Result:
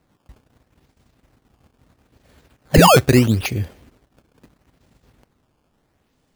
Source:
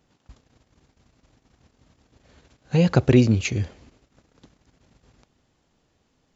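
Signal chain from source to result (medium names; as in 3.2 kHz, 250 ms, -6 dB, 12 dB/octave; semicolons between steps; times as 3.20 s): painted sound fall, 2.74–2.97 s, 400–3200 Hz -12 dBFS; decimation with a swept rate 13×, swing 160% 0.76 Hz; trim +2 dB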